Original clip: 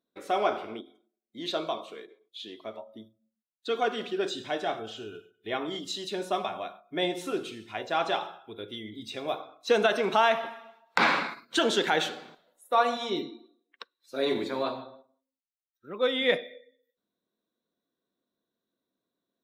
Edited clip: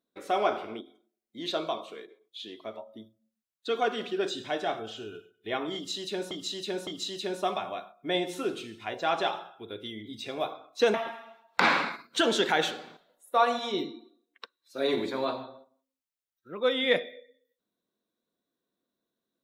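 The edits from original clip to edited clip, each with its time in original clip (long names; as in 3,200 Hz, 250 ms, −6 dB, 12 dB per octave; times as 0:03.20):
0:05.75–0:06.31: repeat, 3 plays
0:09.82–0:10.32: remove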